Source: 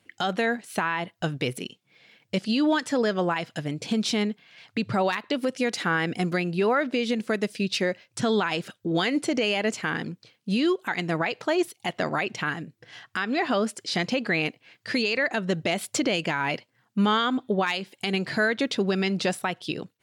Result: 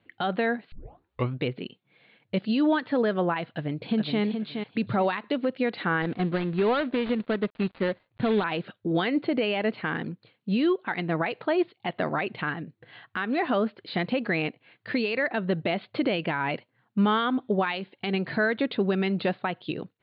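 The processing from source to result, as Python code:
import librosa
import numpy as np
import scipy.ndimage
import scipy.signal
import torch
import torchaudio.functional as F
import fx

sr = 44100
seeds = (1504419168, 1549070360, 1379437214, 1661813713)

y = fx.echo_throw(x, sr, start_s=3.54, length_s=0.67, ms=420, feedback_pct=20, wet_db=-6.0)
y = fx.dead_time(y, sr, dead_ms=0.18, at=(6.02, 8.44))
y = fx.edit(y, sr, fx.tape_start(start_s=0.72, length_s=0.68), tone=tone)
y = scipy.signal.sosfilt(scipy.signal.butter(16, 4400.0, 'lowpass', fs=sr, output='sos'), y)
y = fx.high_shelf(y, sr, hz=3200.0, db=-10.5)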